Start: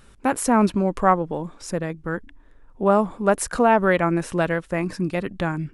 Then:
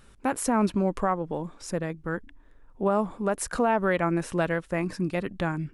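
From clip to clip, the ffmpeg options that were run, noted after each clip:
-af "alimiter=limit=-10.5dB:level=0:latency=1:release=199,volume=-3.5dB"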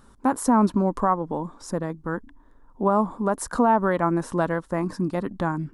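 -af "equalizer=f=250:t=o:w=0.67:g=7,equalizer=f=1k:t=o:w=0.67:g=9,equalizer=f=2.5k:t=o:w=0.67:g=-11"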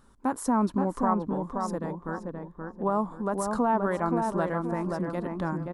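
-filter_complex "[0:a]asplit=2[a][b];[b]adelay=526,lowpass=f=1.7k:p=1,volume=-3.5dB,asplit=2[c][d];[d]adelay=526,lowpass=f=1.7k:p=1,volume=0.38,asplit=2[e][f];[f]adelay=526,lowpass=f=1.7k:p=1,volume=0.38,asplit=2[g][h];[h]adelay=526,lowpass=f=1.7k:p=1,volume=0.38,asplit=2[i][j];[j]adelay=526,lowpass=f=1.7k:p=1,volume=0.38[k];[a][c][e][g][i][k]amix=inputs=6:normalize=0,volume=-6dB"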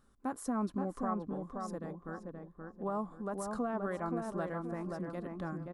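-af "asuperstop=centerf=930:order=4:qfactor=6.8,volume=-9dB"

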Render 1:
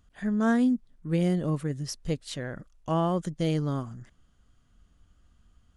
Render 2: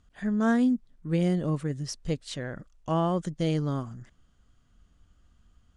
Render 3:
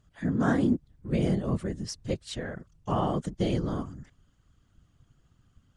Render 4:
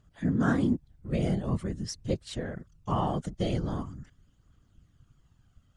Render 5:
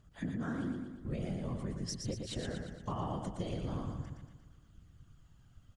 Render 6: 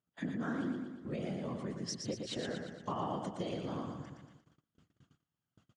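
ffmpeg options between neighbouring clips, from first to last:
-af "lowpass=f=9.5k:w=0.5412,lowpass=f=9.5k:w=1.3066"
-af "afftfilt=real='hypot(re,im)*cos(2*PI*random(0))':imag='hypot(re,im)*sin(2*PI*random(1))':win_size=512:overlap=0.75,volume=5dB"
-af "aphaser=in_gain=1:out_gain=1:delay=1.6:decay=0.32:speed=0.44:type=triangular,volume=-1.5dB"
-filter_complex "[0:a]acompressor=threshold=-35dB:ratio=10,asplit=2[a][b];[b]aecho=0:1:117|234|351|468|585|702|819:0.562|0.292|0.152|0.0791|0.0411|0.0214|0.0111[c];[a][c]amix=inputs=2:normalize=0"
-af "agate=range=-23dB:threshold=-55dB:ratio=16:detection=peak,highpass=200,lowpass=6.6k,volume=2.5dB"

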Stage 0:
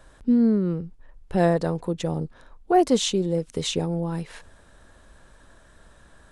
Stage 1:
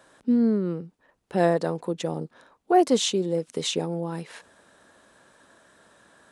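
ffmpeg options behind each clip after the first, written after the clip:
-af "highpass=210"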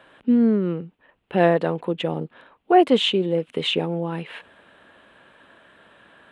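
-af "highshelf=f=4.1k:t=q:w=3:g=-12,volume=3.5dB"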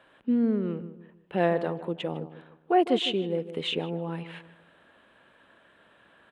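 -filter_complex "[0:a]asplit=2[a][b];[b]adelay=155,lowpass=f=1.3k:p=1,volume=-12dB,asplit=2[c][d];[d]adelay=155,lowpass=f=1.3k:p=1,volume=0.39,asplit=2[e][f];[f]adelay=155,lowpass=f=1.3k:p=1,volume=0.39,asplit=2[g][h];[h]adelay=155,lowpass=f=1.3k:p=1,volume=0.39[i];[a][c][e][g][i]amix=inputs=5:normalize=0,volume=-7dB"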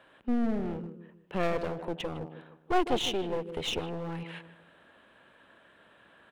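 -af "aeval=exprs='clip(val(0),-1,0.0188)':c=same"

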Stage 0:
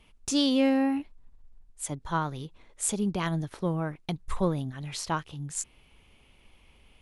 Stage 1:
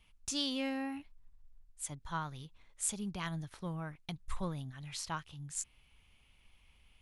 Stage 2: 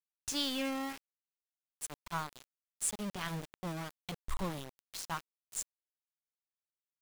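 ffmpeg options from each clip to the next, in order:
-af "equalizer=f=390:t=o:w=2.1:g=-10.5,volume=-5.5dB"
-af "aeval=exprs='val(0)*gte(abs(val(0)),0.0119)':c=same,volume=1dB"

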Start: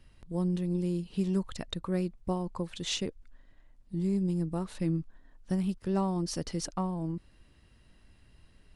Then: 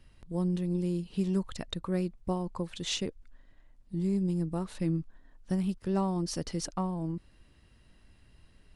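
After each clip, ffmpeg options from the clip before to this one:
-af anull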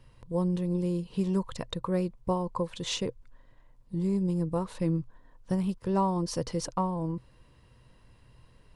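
-af "equalizer=f=125:t=o:w=0.33:g=11,equalizer=f=500:t=o:w=0.33:g=10,equalizer=f=1k:t=o:w=0.33:g=11"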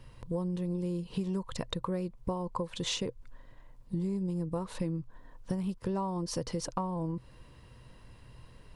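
-af "acompressor=threshold=-35dB:ratio=6,volume=4.5dB"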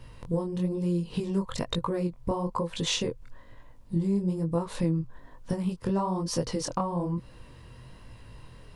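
-af "flanger=delay=17.5:depth=7.8:speed=1.1,volume=8dB"

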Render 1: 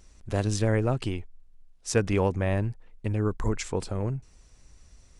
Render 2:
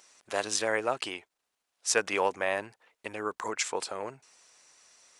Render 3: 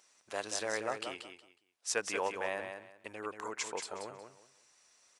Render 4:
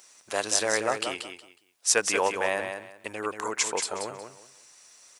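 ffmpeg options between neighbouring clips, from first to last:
-af "highpass=720,volume=5dB"
-af "aecho=1:1:183|366|549:0.447|0.103|0.0236,volume=-7.5dB"
-af "highshelf=f=7.1k:g=9,volume=9dB"

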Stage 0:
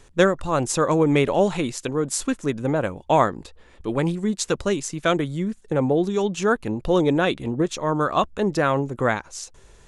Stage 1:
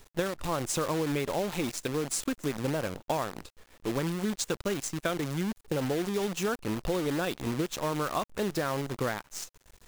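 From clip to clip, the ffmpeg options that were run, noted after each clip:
-af "acompressor=threshold=-22dB:ratio=16,acrusher=bits=6:dc=4:mix=0:aa=0.000001,volume=-4dB"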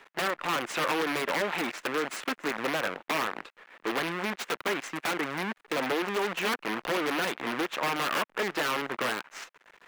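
-filter_complex "[0:a]equalizer=f=1.9k:w=0.42:g=14.5,aeval=exprs='(mod(6.68*val(0)+1,2)-1)/6.68':c=same,acrossover=split=190 2900:gain=0.0708 1 0.224[a][b][c];[a][b][c]amix=inputs=3:normalize=0,volume=-2dB"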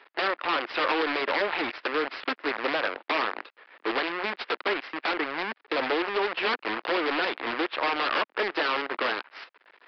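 -filter_complex "[0:a]highpass=f=270:w=0.5412,highpass=f=270:w=1.3066,asplit=2[a][b];[b]aeval=exprs='val(0)*gte(abs(val(0)),0.0282)':c=same,volume=-8dB[c];[a][c]amix=inputs=2:normalize=0,aresample=11025,aresample=44100"

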